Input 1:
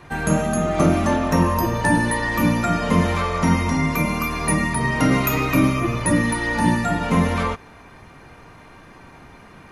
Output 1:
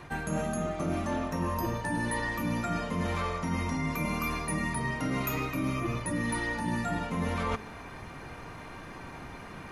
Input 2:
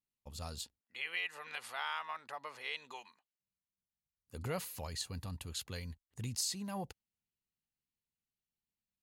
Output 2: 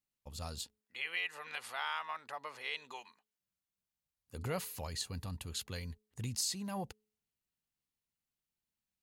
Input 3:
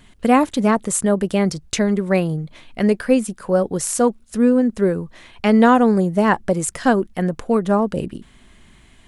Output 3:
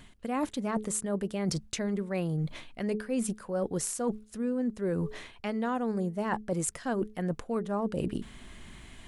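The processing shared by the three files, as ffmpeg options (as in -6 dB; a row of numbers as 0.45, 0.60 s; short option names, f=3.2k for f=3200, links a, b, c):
-af "bandreject=f=213.7:t=h:w=4,bandreject=f=427.4:t=h:w=4,areverse,acompressor=threshold=-29dB:ratio=10,areverse,volume=1dB"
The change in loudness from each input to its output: -11.5, +1.0, -14.0 LU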